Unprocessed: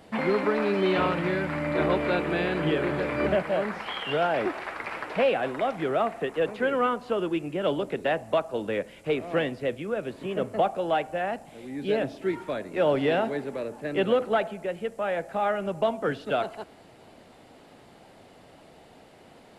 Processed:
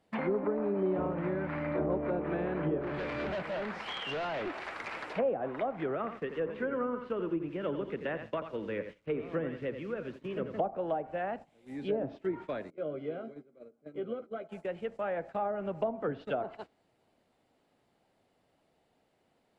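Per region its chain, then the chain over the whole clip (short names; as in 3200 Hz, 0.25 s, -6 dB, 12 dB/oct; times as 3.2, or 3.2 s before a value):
2.79–5.13 high shelf 4000 Hz +7.5 dB + overloaded stage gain 27 dB
5.95–10.6 LPF 3000 Hz + bell 730 Hz -10.5 dB 0.58 oct + lo-fi delay 85 ms, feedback 35%, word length 8-bit, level -9 dB
12.7–14.49 running mean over 49 samples + tilt +3.5 dB/oct + doubler 13 ms -7 dB
whole clip: gate -38 dBFS, range -15 dB; treble ducked by the level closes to 710 Hz, closed at -21 dBFS; gain -5.5 dB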